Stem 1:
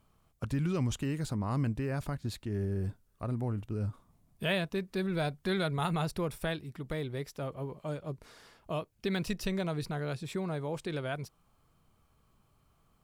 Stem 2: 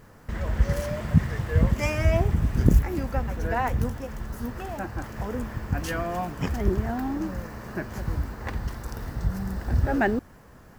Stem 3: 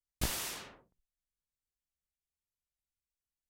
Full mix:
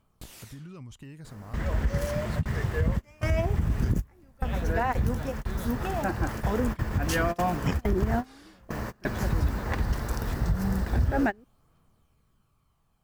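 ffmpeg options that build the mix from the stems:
ffmpeg -i stem1.wav -i stem2.wav -i stem3.wav -filter_complex "[0:a]dynaudnorm=framelen=180:gausssize=13:maxgain=4dB,volume=-3dB,asplit=2[link_01][link_02];[1:a]dynaudnorm=framelen=470:gausssize=7:maxgain=5dB,adelay=1250,volume=0.5dB[link_03];[2:a]volume=-3dB[link_04];[link_02]apad=whole_len=530877[link_05];[link_03][link_05]sidechaingate=range=-30dB:threshold=-43dB:ratio=16:detection=peak[link_06];[link_01][link_04]amix=inputs=2:normalize=0,aphaser=in_gain=1:out_gain=1:delay=3:decay=0.31:speed=0.17:type=triangular,acompressor=threshold=-45dB:ratio=3,volume=0dB[link_07];[link_06][link_07]amix=inputs=2:normalize=0,alimiter=limit=-16dB:level=0:latency=1:release=122" out.wav

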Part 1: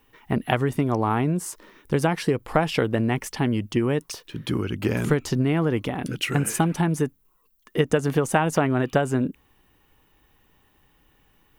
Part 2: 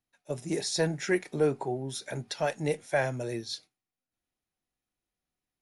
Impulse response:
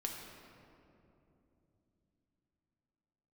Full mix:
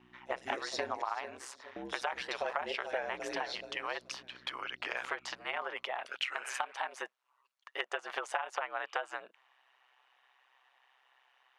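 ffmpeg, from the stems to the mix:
-filter_complex "[0:a]highpass=frequency=650:width=0.5412,highpass=frequency=650:width=1.3066,volume=2.5dB[link_01];[1:a]aeval=exprs='val(0)+0.00794*(sin(2*PI*60*n/s)+sin(2*PI*2*60*n/s)/2+sin(2*PI*3*60*n/s)/3+sin(2*PI*4*60*n/s)/4+sin(2*PI*5*60*n/s)/5)':channel_layout=same,volume=3dB,asplit=3[link_02][link_03][link_04];[link_02]atrim=end=1.02,asetpts=PTS-STARTPTS,afade=type=out:start_time=1.016:duration=0.004:curve=hsin[link_05];[link_03]atrim=start=1.02:end=1.76,asetpts=PTS-STARTPTS,volume=0[link_06];[link_04]atrim=start=1.76,asetpts=PTS-STARTPTS,afade=type=in:duration=0.004:curve=hsin[link_07];[link_05][link_06][link_07]concat=n=3:v=0:a=1,asplit=3[link_08][link_09][link_10];[link_09]volume=-20dB[link_11];[link_10]volume=-9.5dB[link_12];[2:a]atrim=start_sample=2205[link_13];[link_11][link_13]afir=irnorm=-1:irlink=0[link_14];[link_12]aecho=0:1:428|856|1284:1|0.19|0.0361[link_15];[link_01][link_08][link_14][link_15]amix=inputs=4:normalize=0,highpass=510,lowpass=3700,aeval=exprs='val(0)*sin(2*PI*65*n/s)':channel_layout=same,acompressor=threshold=-32dB:ratio=5"

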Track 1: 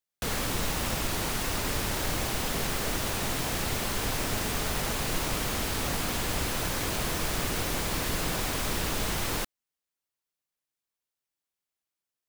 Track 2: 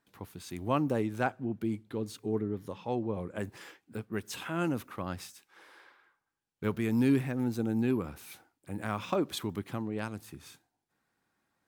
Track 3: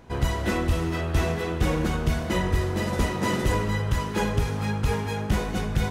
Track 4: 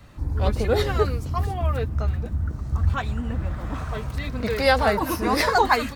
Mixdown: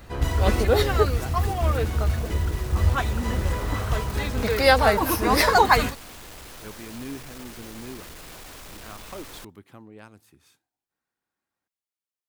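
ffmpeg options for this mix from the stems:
ffmpeg -i stem1.wav -i stem2.wav -i stem3.wav -i stem4.wav -filter_complex "[0:a]asoftclip=type=tanh:threshold=-32dB,volume=-6.5dB[link_01];[1:a]volume=-8.5dB,asplit=2[link_02][link_03];[2:a]volume=-1.5dB[link_04];[3:a]highshelf=frequency=11000:gain=8.5,volume=2dB[link_05];[link_03]apad=whole_len=260588[link_06];[link_04][link_06]sidechaincompress=threshold=-42dB:ratio=8:attack=16:release=1170[link_07];[link_01][link_02][link_07][link_05]amix=inputs=4:normalize=0,equalizer=frequency=160:width=0.97:gain=-4.5" out.wav

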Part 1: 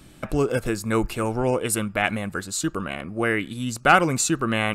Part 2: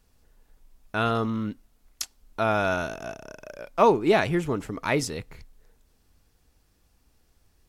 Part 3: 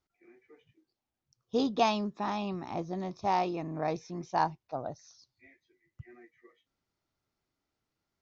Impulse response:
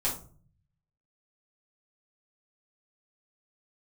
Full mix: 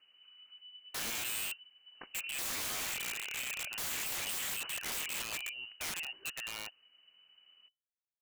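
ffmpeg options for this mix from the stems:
-filter_complex "[0:a]aeval=exprs='val(0)+0.00447*(sin(2*PI*50*n/s)+sin(2*PI*2*50*n/s)/2+sin(2*PI*3*50*n/s)/3+sin(2*PI*4*50*n/s)/4+sin(2*PI*5*50*n/s)/5)':channel_layout=same,asoftclip=type=tanh:threshold=-10dB,adelay=1950,volume=-17.5dB[link_01];[1:a]acompressor=threshold=-25dB:ratio=12,volume=-1.5dB,asplit=2[link_02][link_03];[2:a]lowpass=frequency=600:width_type=q:width=4.6,adelay=600,volume=-14dB[link_04];[link_03]apad=whole_len=388566[link_05];[link_04][link_05]sidechaingate=range=-33dB:threshold=-53dB:ratio=16:detection=peak[link_06];[link_01][link_02][link_06]amix=inputs=3:normalize=0,lowpass=frequency=2600:width_type=q:width=0.5098,lowpass=frequency=2600:width_type=q:width=0.6013,lowpass=frequency=2600:width_type=q:width=0.9,lowpass=frequency=2600:width_type=q:width=2.563,afreqshift=-3000,aeval=exprs='(mod(42.2*val(0)+1,2)-1)/42.2':channel_layout=same"

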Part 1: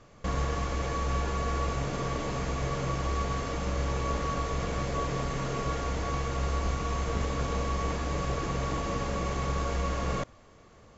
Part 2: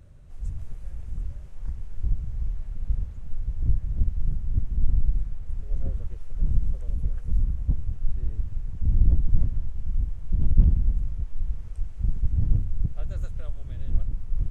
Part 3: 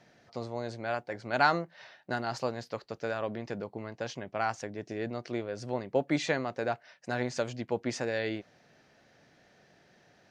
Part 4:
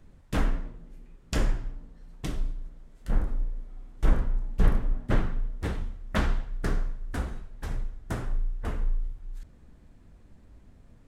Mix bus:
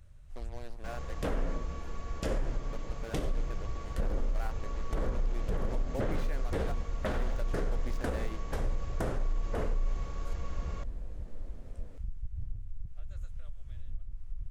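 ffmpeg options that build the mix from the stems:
ffmpeg -i stem1.wav -i stem2.wav -i stem3.wav -i stem4.wav -filter_complex "[0:a]adelay=600,volume=-14.5dB[link_01];[1:a]equalizer=frequency=280:width_type=o:width=2.7:gain=-11,acompressor=threshold=-34dB:ratio=3,volume=-2dB[link_02];[2:a]highshelf=frequency=7200:gain=-10,acrusher=bits=5:mix=0:aa=0.5,volume=-11.5dB,asplit=3[link_03][link_04][link_05];[link_03]atrim=end=1.18,asetpts=PTS-STARTPTS,afade=type=out:start_time=1.176:duration=0.004:curve=hsin[link_06];[link_04]atrim=start=1.18:end=2.64,asetpts=PTS-STARTPTS,volume=0[link_07];[link_05]atrim=start=2.64,asetpts=PTS-STARTPTS,afade=type=in:duration=0.004:curve=hsin[link_08];[link_06][link_07][link_08]concat=n=3:v=0:a=1[link_09];[3:a]equalizer=frequency=520:width=1.5:gain=11,alimiter=limit=-20.5dB:level=0:latency=1:release=155,adelay=900,volume=1.5dB[link_10];[link_01][link_02][link_09][link_10]amix=inputs=4:normalize=0,alimiter=limit=-22.5dB:level=0:latency=1:release=69" out.wav

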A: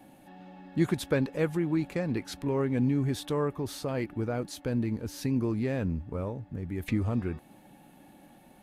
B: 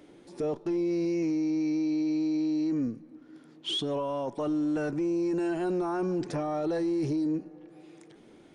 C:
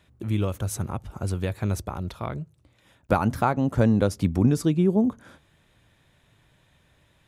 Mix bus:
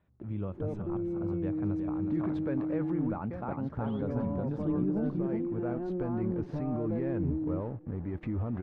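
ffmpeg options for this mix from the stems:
ffmpeg -i stem1.wav -i stem2.wav -i stem3.wav -filter_complex "[0:a]aeval=exprs='sgn(val(0))*max(abs(val(0))-0.00376,0)':channel_layout=same,adelay=1350,volume=2.5dB[link_01];[1:a]aemphasis=mode=reproduction:type=riaa,acompressor=mode=upward:threshold=-39dB:ratio=2.5,adelay=200,volume=-10.5dB[link_02];[2:a]equalizer=frequency=190:width=5:gain=4.5,volume=-10dB,asplit=3[link_03][link_04][link_05];[link_04]volume=-8dB[link_06];[link_05]apad=whole_len=439956[link_07];[link_01][link_07]sidechaincompress=threshold=-37dB:ratio=8:attack=16:release=1350[link_08];[link_08][link_03]amix=inputs=2:normalize=0,alimiter=level_in=2.5dB:limit=-24dB:level=0:latency=1:release=16,volume=-2.5dB,volume=0dB[link_09];[link_06]aecho=0:1:366|732|1098|1464|1830:1|0.35|0.122|0.0429|0.015[link_10];[link_02][link_09][link_10]amix=inputs=3:normalize=0,lowpass=1400" out.wav

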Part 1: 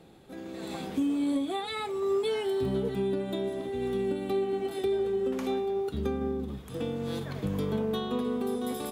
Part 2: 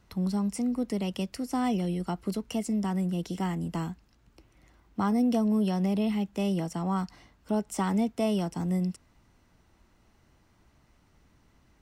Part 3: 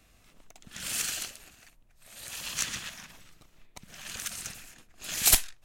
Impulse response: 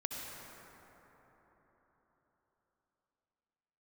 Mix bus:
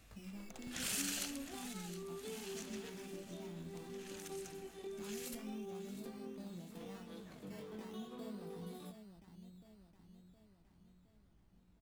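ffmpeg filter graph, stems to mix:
-filter_complex "[0:a]highpass=190,aeval=exprs='sgn(val(0))*max(abs(val(0))-0.00531,0)':channel_layout=same,volume=-9.5dB[link_01];[1:a]acompressor=threshold=-46dB:ratio=1.5,lowshelf=frequency=360:gain=8.5,acrusher=samples=14:mix=1:aa=0.000001:lfo=1:lforange=8.4:lforate=0.44,volume=-12dB,asplit=2[link_02][link_03];[link_03]volume=-17dB[link_04];[2:a]acompressor=threshold=-33dB:ratio=10,volume=-2.5dB,afade=type=out:start_time=1.59:duration=0.52:silence=0.251189,asplit=2[link_05][link_06];[link_06]volume=-13.5dB[link_07];[link_01][link_02]amix=inputs=2:normalize=0,flanger=delay=18:depth=5.7:speed=0.7,acompressor=threshold=-55dB:ratio=1.5,volume=0dB[link_08];[link_04][link_07]amix=inputs=2:normalize=0,aecho=0:1:715|1430|2145|2860|3575|4290|5005|5720:1|0.53|0.281|0.149|0.0789|0.0418|0.0222|0.0117[link_09];[link_05][link_08][link_09]amix=inputs=3:normalize=0"

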